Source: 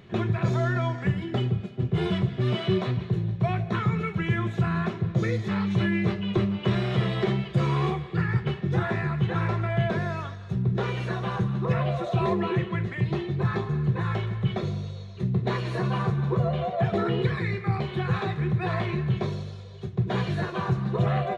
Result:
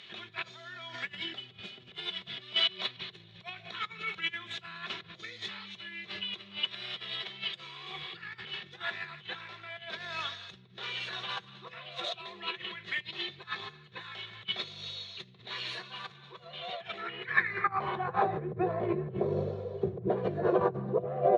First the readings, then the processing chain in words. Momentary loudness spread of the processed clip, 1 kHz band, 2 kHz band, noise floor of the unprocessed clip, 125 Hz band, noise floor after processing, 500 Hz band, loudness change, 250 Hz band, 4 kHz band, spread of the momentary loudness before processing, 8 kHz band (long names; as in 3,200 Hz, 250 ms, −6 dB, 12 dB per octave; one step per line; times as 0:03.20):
14 LU, −4.5 dB, −2.0 dB, −39 dBFS, −20.5 dB, −56 dBFS, −5.0 dB, −8.0 dB, −14.0 dB, +5.5 dB, 4 LU, can't be measured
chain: low-shelf EQ 130 Hz +5.5 dB
compressor whose output falls as the input rises −30 dBFS, ratio −1
band-pass filter sweep 3,500 Hz → 490 Hz, 0:16.75–0:18.53
level +9 dB